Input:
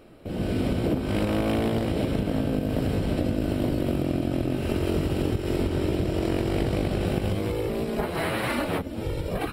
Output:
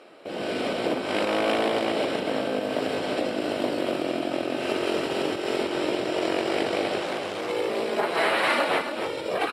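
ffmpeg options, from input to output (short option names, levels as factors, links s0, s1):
-filter_complex "[0:a]asettb=1/sr,asplit=3[s0][s1][s2];[s0]atrim=end=7.004[s3];[s1]atrim=start=7:end=7.5,asetpts=PTS-STARTPTS,afade=t=in:d=0.004:c=qsin,afade=t=out:st=0.496:d=0.004:c=qsin,asoftclip=type=hard:threshold=0.0376[s4];[s2]atrim=start=7.496[s5];[s3][s4]acrossfade=d=0.004:c1=hsin:c2=qsin[s6];[s6][s5]acrossfade=d=0.004:c1=qsin:c2=hsin,highpass=510,lowpass=7300,aecho=1:1:276:0.398,volume=2.11"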